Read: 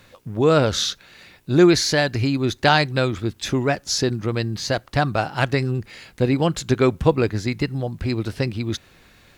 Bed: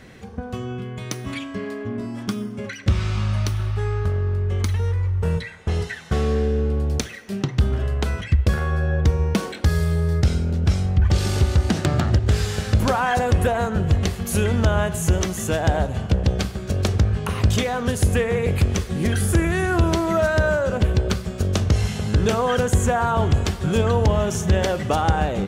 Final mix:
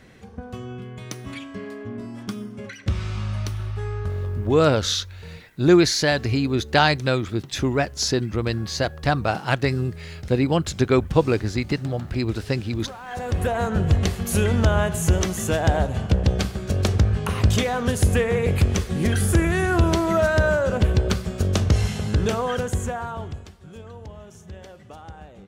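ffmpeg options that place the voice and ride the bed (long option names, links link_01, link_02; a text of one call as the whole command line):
ffmpeg -i stem1.wav -i stem2.wav -filter_complex "[0:a]adelay=4100,volume=-1dB[link_01];[1:a]volume=13dB,afade=type=out:start_time=4.4:duration=0.31:silence=0.223872,afade=type=in:start_time=13.04:duration=0.69:silence=0.125893,afade=type=out:start_time=21.75:duration=1.74:silence=0.0841395[link_02];[link_01][link_02]amix=inputs=2:normalize=0" out.wav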